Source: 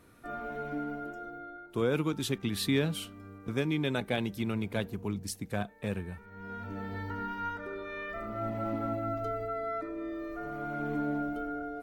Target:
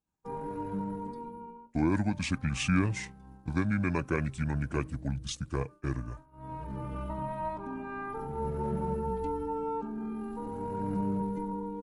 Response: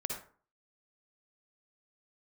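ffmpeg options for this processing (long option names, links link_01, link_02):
-af "asetrate=29433,aresample=44100,atempo=1.49831,agate=range=-33dB:threshold=-42dB:ratio=3:detection=peak,volume=1.5dB"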